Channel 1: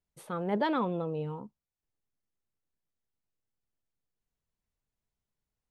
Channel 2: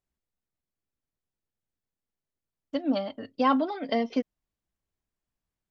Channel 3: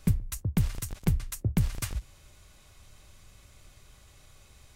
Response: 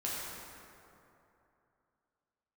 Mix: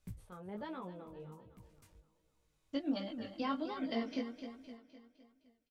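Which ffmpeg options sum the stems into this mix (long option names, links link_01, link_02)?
-filter_complex "[0:a]volume=-13dB,asplit=3[link_01][link_02][link_03];[link_02]volume=-14dB[link_04];[1:a]equalizer=frequency=670:width_type=o:width=2.4:gain=-7.5,alimiter=level_in=0.5dB:limit=-24dB:level=0:latency=1:release=414,volume=-0.5dB,volume=1dB,asplit=2[link_05][link_06];[link_06]volume=-9.5dB[link_07];[2:a]volume=-19dB[link_08];[link_03]apad=whole_len=209596[link_09];[link_08][link_09]sidechaincompress=threshold=-57dB:ratio=8:attack=12:release=1320[link_10];[link_04][link_07]amix=inputs=2:normalize=0,aecho=0:1:256|512|768|1024|1280|1536|1792:1|0.51|0.26|0.133|0.0677|0.0345|0.0176[link_11];[link_01][link_05][link_10][link_11]amix=inputs=4:normalize=0,flanger=delay=15.5:depth=6.8:speed=1.3"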